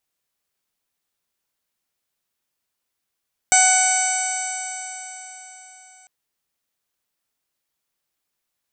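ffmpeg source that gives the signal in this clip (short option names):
-f lavfi -i "aevalsrc='0.141*pow(10,-3*t/4.13)*sin(2*PI*745.23*t)+0.0794*pow(10,-3*t/4.13)*sin(2*PI*1491.88*t)+0.0944*pow(10,-3*t/4.13)*sin(2*PI*2241.33*t)+0.0316*pow(10,-3*t/4.13)*sin(2*PI*2994.98*t)+0.0211*pow(10,-3*t/4.13)*sin(2*PI*3754.22*t)+0.0282*pow(10,-3*t/4.13)*sin(2*PI*4520.41*t)+0.0168*pow(10,-3*t/4.13)*sin(2*PI*5294.88*t)+0.112*pow(10,-3*t/4.13)*sin(2*PI*6078.97*t)+0.0376*pow(10,-3*t/4.13)*sin(2*PI*6873.95*t)+0.178*pow(10,-3*t/4.13)*sin(2*PI*7681.09*t)+0.0891*pow(10,-3*t/4.13)*sin(2*PI*8501.62*t)':d=2.55:s=44100"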